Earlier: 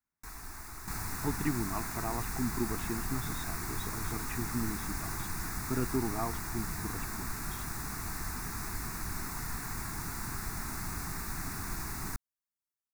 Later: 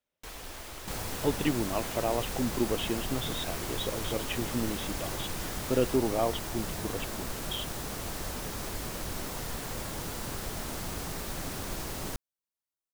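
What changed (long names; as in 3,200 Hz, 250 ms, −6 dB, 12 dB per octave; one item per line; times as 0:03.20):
second sound: add parametric band 2,600 Hz −4.5 dB 1.5 octaves
master: remove phaser with its sweep stopped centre 1,300 Hz, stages 4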